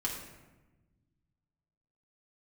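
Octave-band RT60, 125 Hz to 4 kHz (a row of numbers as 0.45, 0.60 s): 2.4, 1.9, 1.2, 1.0, 0.95, 0.70 s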